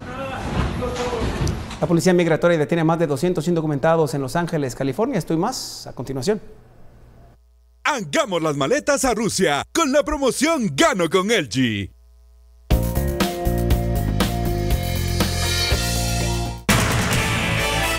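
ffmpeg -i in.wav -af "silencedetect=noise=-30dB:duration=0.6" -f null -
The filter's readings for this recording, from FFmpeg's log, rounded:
silence_start: 6.44
silence_end: 7.85 | silence_duration: 1.42
silence_start: 11.86
silence_end: 12.70 | silence_duration: 0.85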